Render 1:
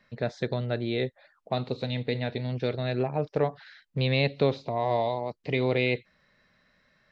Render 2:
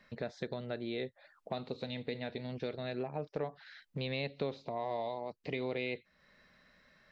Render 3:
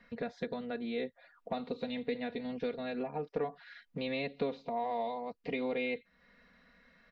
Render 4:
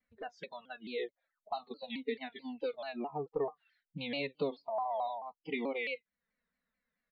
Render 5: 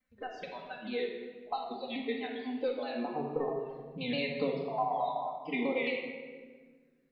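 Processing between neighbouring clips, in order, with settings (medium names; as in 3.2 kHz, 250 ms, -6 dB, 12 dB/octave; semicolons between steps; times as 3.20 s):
peaking EQ 120 Hz -8 dB 0.35 oct; compression 2:1, threshold -44 dBFS, peak gain reduction 14 dB; trim +1 dB
tone controls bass 0 dB, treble -9 dB; comb 4.2 ms, depth 83%
spectral noise reduction 25 dB; vibrato with a chosen wave saw down 4.6 Hz, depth 160 cents; trim +1 dB
simulated room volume 1600 m³, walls mixed, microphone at 2.1 m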